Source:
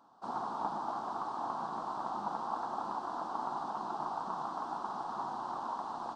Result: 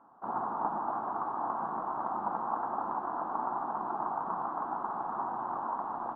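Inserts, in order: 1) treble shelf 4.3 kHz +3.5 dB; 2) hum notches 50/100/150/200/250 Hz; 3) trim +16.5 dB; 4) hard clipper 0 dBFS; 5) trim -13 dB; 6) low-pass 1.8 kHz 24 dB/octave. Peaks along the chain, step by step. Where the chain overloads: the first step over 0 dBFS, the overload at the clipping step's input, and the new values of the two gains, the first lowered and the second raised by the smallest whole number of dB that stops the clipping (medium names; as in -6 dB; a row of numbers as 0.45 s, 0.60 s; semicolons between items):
-20.5 dBFS, -20.5 dBFS, -4.0 dBFS, -4.0 dBFS, -17.0 dBFS, -17.0 dBFS; nothing clips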